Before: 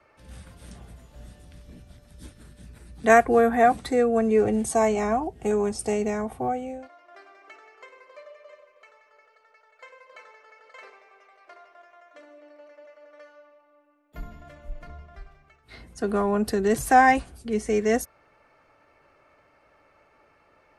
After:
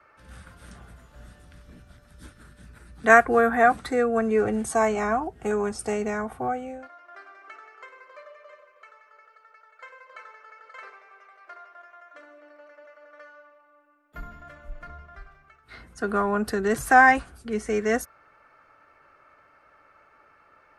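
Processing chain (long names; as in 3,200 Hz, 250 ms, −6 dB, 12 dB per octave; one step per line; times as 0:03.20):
parametric band 1,400 Hz +11 dB 0.82 octaves
level −2.5 dB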